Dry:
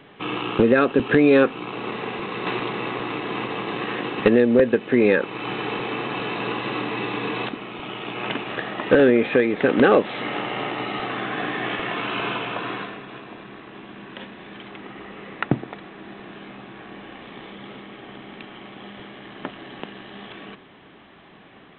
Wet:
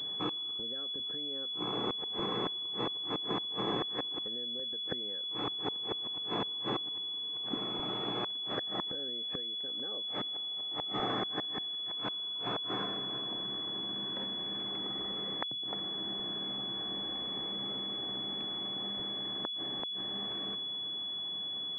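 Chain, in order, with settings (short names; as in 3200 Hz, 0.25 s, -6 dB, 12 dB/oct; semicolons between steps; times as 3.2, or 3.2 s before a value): flipped gate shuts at -17 dBFS, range -27 dB; pulse-width modulation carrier 3400 Hz; gain -4.5 dB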